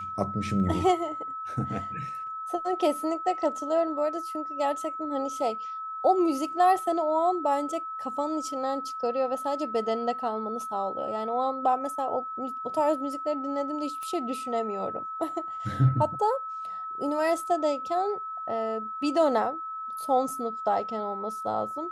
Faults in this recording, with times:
whistle 1,300 Hz −33 dBFS
0:14.03: click −26 dBFS

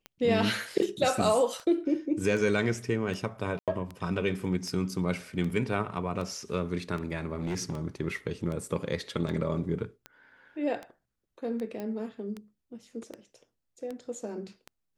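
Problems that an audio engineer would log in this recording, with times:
scratch tick 78 rpm −25 dBFS
0:03.59–0:03.68: drop-out 87 ms
0:07.34–0:07.79: clipping −27 dBFS
0:11.80: click −24 dBFS

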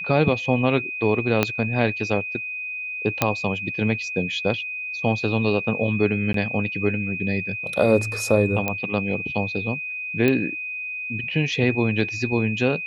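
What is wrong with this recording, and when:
whistle 2,500 Hz −28 dBFS
0:01.43: click −4 dBFS
0:03.22: click −3 dBFS
0:06.33–0:06.34: drop-out 13 ms
0:08.68: click −9 dBFS
0:10.28: click −9 dBFS

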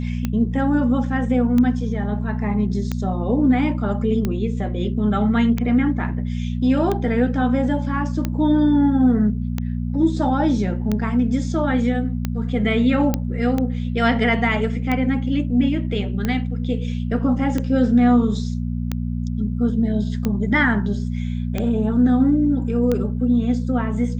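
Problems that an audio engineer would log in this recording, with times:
mains hum 60 Hz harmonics 4 −24 dBFS
scratch tick 45 rpm −10 dBFS
0:13.14: click −7 dBFS

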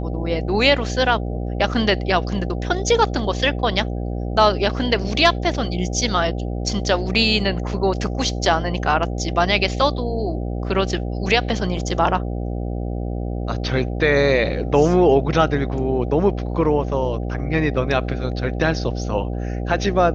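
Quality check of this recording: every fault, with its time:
mains buzz 60 Hz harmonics 13 −25 dBFS

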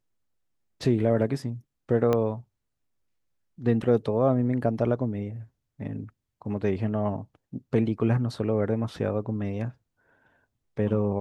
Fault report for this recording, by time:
0:02.13: click −13 dBFS

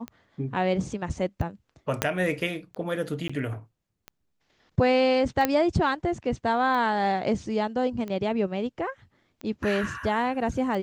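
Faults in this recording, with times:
scratch tick 45 rpm −23 dBFS
0:02.02: click −7 dBFS
0:03.28–0:03.29: drop-out 15 ms
0:05.45: click −8 dBFS

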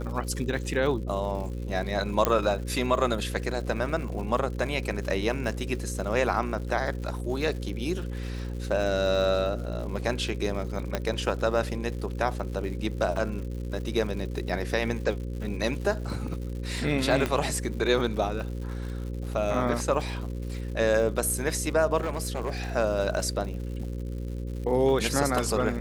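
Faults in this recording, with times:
mains buzz 60 Hz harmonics 9 −33 dBFS
surface crackle 160 per second −37 dBFS
0:02.25: click −7 dBFS
0:10.95: click −12 dBFS
0:17.26: click −13 dBFS
0:22.00–0:22.65: clipping −24.5 dBFS

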